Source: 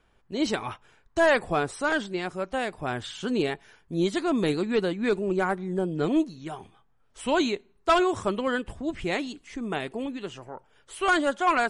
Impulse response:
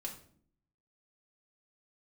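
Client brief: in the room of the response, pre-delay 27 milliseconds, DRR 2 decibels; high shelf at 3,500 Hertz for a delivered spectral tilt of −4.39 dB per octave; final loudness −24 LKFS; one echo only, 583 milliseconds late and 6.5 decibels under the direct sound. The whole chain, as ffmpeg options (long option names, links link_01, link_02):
-filter_complex "[0:a]highshelf=frequency=3500:gain=-6,aecho=1:1:583:0.473,asplit=2[link_01][link_02];[1:a]atrim=start_sample=2205,adelay=27[link_03];[link_02][link_03]afir=irnorm=-1:irlink=0,volume=-0.5dB[link_04];[link_01][link_04]amix=inputs=2:normalize=0"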